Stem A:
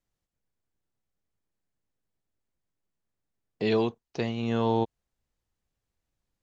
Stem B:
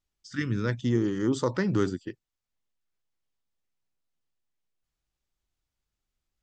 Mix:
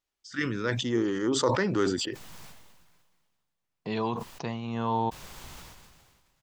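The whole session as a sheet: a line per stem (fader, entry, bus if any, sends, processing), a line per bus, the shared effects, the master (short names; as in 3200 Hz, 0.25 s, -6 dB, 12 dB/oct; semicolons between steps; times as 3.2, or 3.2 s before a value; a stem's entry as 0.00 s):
-6.0 dB, 0.25 s, no send, fifteen-band EQ 160 Hz +7 dB, 400 Hz -4 dB, 1000 Hz +11 dB
+2.5 dB, 0.00 s, no send, tone controls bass -13 dB, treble -3 dB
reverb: off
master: sustainer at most 34 dB/s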